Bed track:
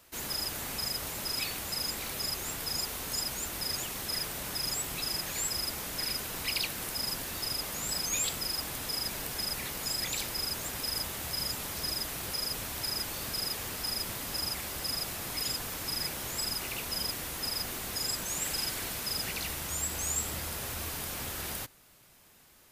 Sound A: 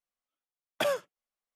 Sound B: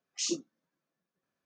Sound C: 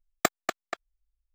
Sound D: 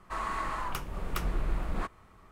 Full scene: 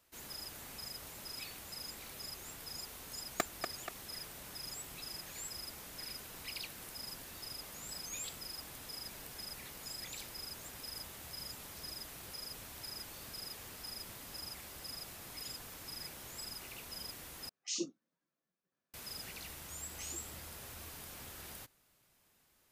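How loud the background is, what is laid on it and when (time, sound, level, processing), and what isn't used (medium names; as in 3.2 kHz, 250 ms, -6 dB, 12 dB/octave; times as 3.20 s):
bed track -12 dB
3.15 s: add C -10.5 dB
17.49 s: replace with B -5.5 dB
19.83 s: add B -16.5 dB + three bands compressed up and down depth 100%
not used: A, D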